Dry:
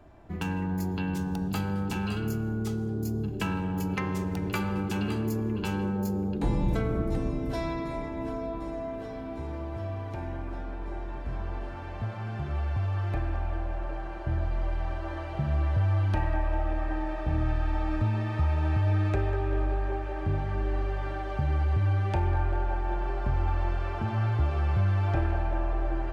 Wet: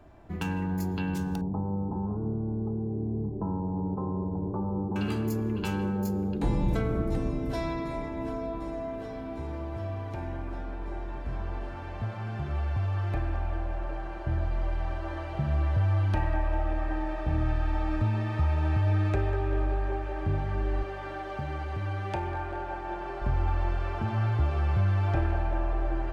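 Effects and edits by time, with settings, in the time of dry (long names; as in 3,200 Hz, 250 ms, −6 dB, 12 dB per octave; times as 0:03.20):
0:01.41–0:04.96: elliptic low-pass filter 1,000 Hz, stop band 50 dB
0:20.83–0:23.22: high-pass filter 220 Hz 6 dB per octave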